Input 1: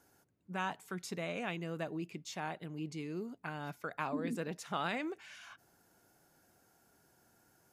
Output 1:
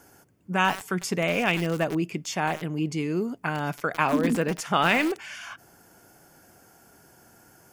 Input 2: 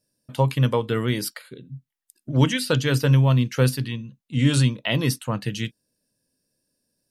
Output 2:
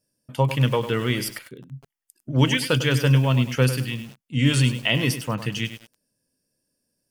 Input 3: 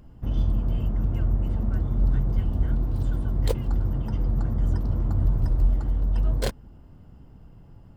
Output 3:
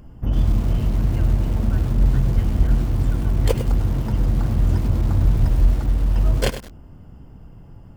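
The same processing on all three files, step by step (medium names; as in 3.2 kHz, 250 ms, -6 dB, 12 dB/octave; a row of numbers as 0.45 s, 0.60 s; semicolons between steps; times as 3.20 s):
band-stop 3.9 kHz, Q 5.2; dynamic bell 2.7 kHz, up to +6 dB, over -45 dBFS, Q 1.4; bit-crushed delay 101 ms, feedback 35%, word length 6-bit, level -10.5 dB; peak normalisation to -6 dBFS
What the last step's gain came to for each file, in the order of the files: +13.5 dB, -0.5 dB, +6.0 dB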